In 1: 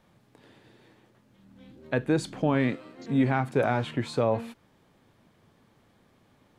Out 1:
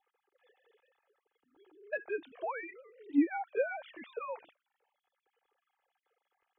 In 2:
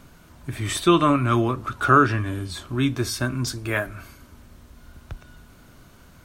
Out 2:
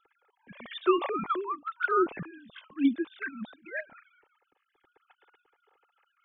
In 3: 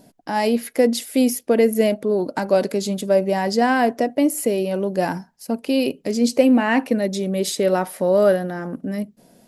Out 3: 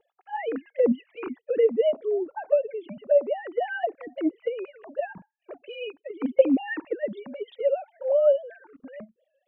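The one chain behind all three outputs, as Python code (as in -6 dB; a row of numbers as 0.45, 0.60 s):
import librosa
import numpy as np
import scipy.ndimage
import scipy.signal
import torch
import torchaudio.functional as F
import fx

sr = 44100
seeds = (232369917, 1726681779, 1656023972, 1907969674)

y = fx.sine_speech(x, sr)
y = fx.env_flanger(y, sr, rest_ms=2.4, full_db=-14.0)
y = F.gain(torch.from_numpy(y), -5.0).numpy()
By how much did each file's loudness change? -9.0, -8.0, -6.0 LU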